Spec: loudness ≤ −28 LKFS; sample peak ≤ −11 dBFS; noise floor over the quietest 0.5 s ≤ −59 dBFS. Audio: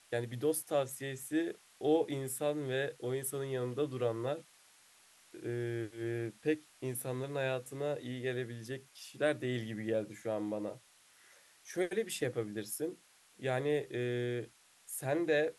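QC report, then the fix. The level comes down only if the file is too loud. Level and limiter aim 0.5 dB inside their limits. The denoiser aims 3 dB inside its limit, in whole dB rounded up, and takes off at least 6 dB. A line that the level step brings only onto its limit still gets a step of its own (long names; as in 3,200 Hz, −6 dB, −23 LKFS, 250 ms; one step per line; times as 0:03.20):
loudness −36.5 LKFS: in spec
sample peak −19.0 dBFS: in spec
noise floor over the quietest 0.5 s −64 dBFS: in spec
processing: no processing needed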